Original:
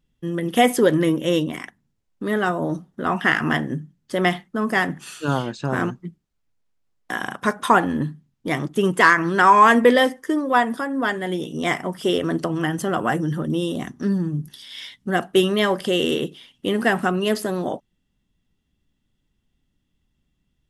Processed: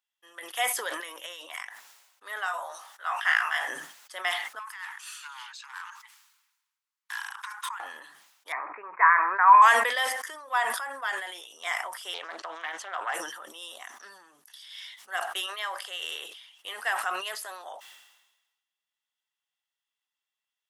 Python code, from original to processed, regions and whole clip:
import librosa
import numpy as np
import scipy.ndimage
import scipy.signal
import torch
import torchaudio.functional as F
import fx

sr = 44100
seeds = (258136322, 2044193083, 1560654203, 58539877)

y = fx.chain(x, sr, fx.highpass(hz=270.0, slope=12),
    fx.over_compress(threshold_db=-26.0, ratio=-1.0), at=(1.0, 1.6))
y = fx.chain(y, sr, fx.highpass(hz=780.0, slope=12),
    fx.doubler(ms=18.0, db=-2.5), at=(2.46, 3.68))
y = fx.chain(y, sr, fx.over_compress(threshold_db=-24.0, ratio=-0.5),
    fx.tube_stage(drive_db=21.0, bias=0.3),
    fx.steep_highpass(hz=860.0, slope=96), at=(4.59, 7.8))
y = fx.chain(y, sr, fx.cheby1_lowpass(hz=2500.0, order=10),
    fx.peak_eq(hz=1000.0, db=7.0, octaves=0.46), at=(8.52, 9.62))
y = fx.chain(y, sr, fx.air_absorb(metres=97.0),
    fx.doppler_dist(depth_ms=0.22), at=(12.14, 13.14))
y = fx.chain(y, sr, fx.highpass(hz=630.0, slope=6),
    fx.high_shelf(hz=2000.0, db=-5.0), at=(15.46, 16.02))
y = scipy.signal.sosfilt(scipy.signal.butter(4, 820.0, 'highpass', fs=sr, output='sos'), y)
y = fx.high_shelf(y, sr, hz=9600.0, db=3.5)
y = fx.sustainer(y, sr, db_per_s=52.0)
y = y * librosa.db_to_amplitude(-7.0)